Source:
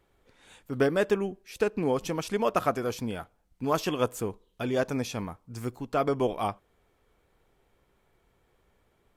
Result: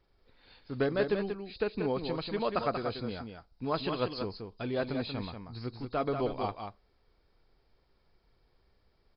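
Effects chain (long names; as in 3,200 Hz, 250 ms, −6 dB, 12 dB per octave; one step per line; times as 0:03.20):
hearing-aid frequency compression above 3,600 Hz 4 to 1
low-shelf EQ 61 Hz +9.5 dB
on a send: single-tap delay 186 ms −6.5 dB
on the sum: level −5.5 dB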